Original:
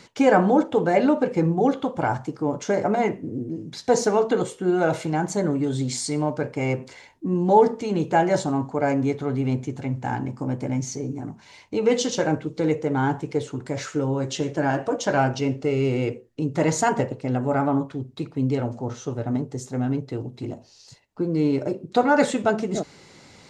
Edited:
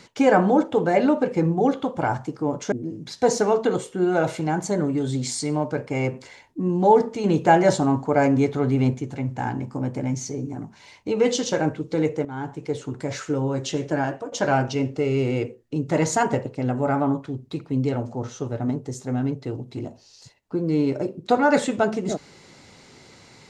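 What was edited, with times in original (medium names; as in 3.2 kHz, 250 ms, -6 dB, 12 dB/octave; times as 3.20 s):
2.72–3.38 s: delete
7.90–9.60 s: gain +3.5 dB
12.91–13.54 s: fade in, from -15 dB
14.60–14.98 s: fade out, to -13 dB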